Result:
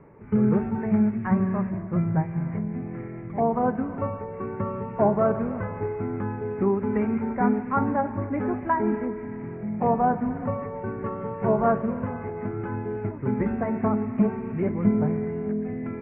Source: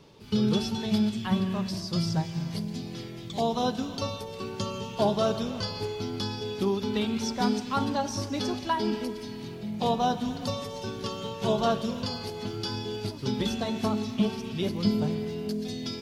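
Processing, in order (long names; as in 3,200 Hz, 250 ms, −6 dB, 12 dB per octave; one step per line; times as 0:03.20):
Butterworth low-pass 2,200 Hz 72 dB per octave
level +4 dB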